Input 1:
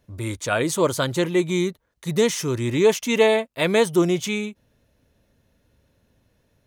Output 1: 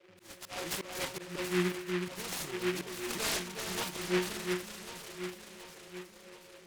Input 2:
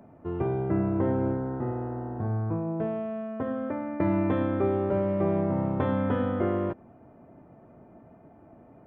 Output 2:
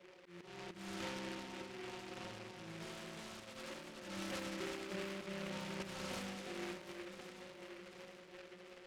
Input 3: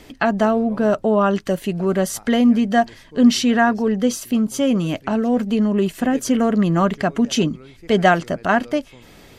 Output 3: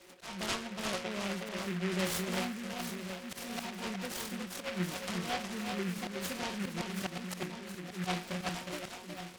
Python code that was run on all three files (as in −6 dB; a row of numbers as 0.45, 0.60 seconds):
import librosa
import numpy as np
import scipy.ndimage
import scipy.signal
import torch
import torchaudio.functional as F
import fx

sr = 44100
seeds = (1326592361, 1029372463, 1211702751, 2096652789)

p1 = fx.freq_compress(x, sr, knee_hz=1900.0, ratio=4.0)
p2 = scipy.signal.sosfilt(scipy.signal.butter(4, 77.0, 'highpass', fs=sr, output='sos'), p1)
p3 = fx.low_shelf(p2, sr, hz=210.0, db=-9.0)
p4 = fx.dmg_noise_band(p3, sr, seeds[0], low_hz=330.0, high_hz=600.0, level_db=-48.0)
p5 = fx.stiff_resonator(p4, sr, f0_hz=180.0, decay_s=0.31, stiffness=0.002)
p6 = fx.auto_swell(p5, sr, attack_ms=224.0)
p7 = p6 + fx.echo_alternate(p6, sr, ms=364, hz=1800.0, feedback_pct=72, wet_db=-4.5, dry=0)
y = fx.noise_mod_delay(p7, sr, seeds[1], noise_hz=1800.0, depth_ms=0.2)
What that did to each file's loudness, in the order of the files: −14.0, −18.5, −18.5 LU